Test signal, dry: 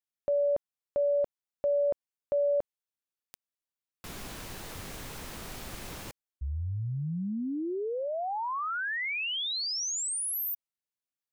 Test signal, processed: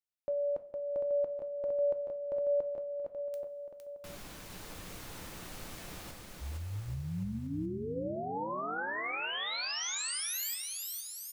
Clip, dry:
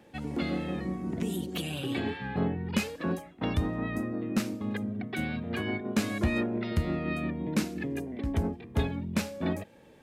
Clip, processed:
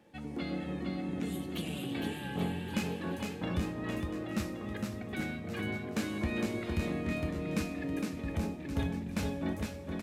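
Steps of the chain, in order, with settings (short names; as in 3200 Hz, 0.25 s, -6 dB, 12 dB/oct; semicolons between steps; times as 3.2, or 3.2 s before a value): on a send: bouncing-ball echo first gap 0.46 s, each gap 0.8×, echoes 5; on the sum: two-slope reverb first 0.33 s, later 3.9 s, from -18 dB, DRR 8 dB; gain -6.5 dB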